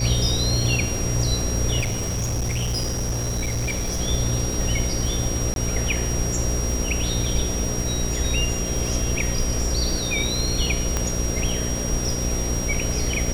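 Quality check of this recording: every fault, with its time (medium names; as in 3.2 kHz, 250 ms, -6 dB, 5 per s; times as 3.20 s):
buzz 60 Hz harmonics 9 -27 dBFS
crackle 160 per s -29 dBFS
whine 5.7 kHz -29 dBFS
1.80–4.01 s: clipped -21 dBFS
5.54–5.56 s: dropout 22 ms
10.97 s: pop -8 dBFS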